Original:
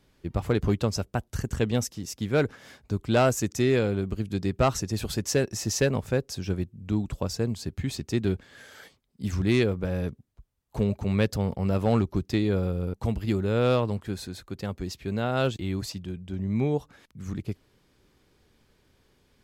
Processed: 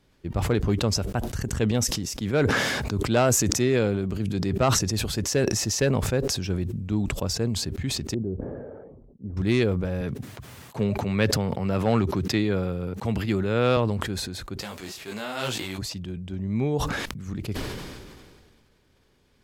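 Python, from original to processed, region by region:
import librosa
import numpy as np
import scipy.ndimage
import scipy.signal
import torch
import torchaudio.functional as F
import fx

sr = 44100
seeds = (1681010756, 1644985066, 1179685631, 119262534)

y = fx.chain(x, sr, fx.highpass(hz=79.0, slope=12),
    fx.sustainer(db_per_s=22.0), at=(2.21, 4.79))
y = fx.chain(y, sr, fx.ladder_lowpass(hz=650.0, resonance_pct=30),
    fx.resample_bad(factor=6, down='none', up='filtered'), at=(8.14, 9.37))
y = fx.chain(y, sr, fx.highpass(hz=93.0, slope=24),
    fx.peak_eq(hz=1900.0, db=5.0, octaves=1.8), at=(10.01, 13.77))
y = fx.envelope_flatten(y, sr, power=0.6, at=(14.6, 15.77), fade=0.02)
y = fx.highpass(y, sr, hz=300.0, slope=6, at=(14.6, 15.77), fade=0.02)
y = fx.detune_double(y, sr, cents=38, at=(14.6, 15.77), fade=0.02)
y = fx.high_shelf(y, sr, hz=11000.0, db=-4.5)
y = fx.sustainer(y, sr, db_per_s=30.0)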